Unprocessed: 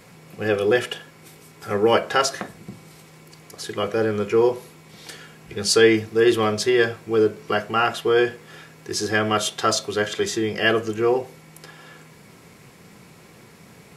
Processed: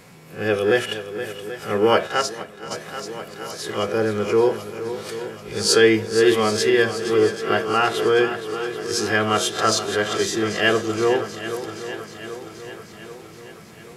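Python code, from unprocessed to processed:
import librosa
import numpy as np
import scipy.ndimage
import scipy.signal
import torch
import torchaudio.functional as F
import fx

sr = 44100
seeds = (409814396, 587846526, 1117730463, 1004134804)

y = fx.spec_swells(x, sr, rise_s=0.3)
y = fx.echo_swing(y, sr, ms=785, ratio=1.5, feedback_pct=53, wet_db=-11.5)
y = fx.upward_expand(y, sr, threshold_db=-28.0, expansion=1.5, at=(2.06, 2.7), fade=0.02)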